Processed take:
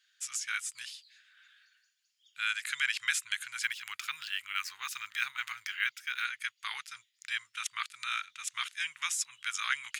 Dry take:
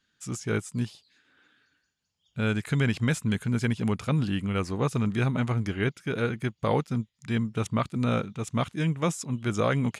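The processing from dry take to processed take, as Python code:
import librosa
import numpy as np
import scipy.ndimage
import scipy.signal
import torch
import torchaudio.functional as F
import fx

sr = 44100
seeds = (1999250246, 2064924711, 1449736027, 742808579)

y = scipy.signal.sosfilt(scipy.signal.cheby2(4, 50, 610.0, 'highpass', fs=sr, output='sos'), x)
y = fx.resample_linear(y, sr, factor=2, at=(3.63, 6.25))
y = F.gain(torch.from_numpy(y), 4.5).numpy()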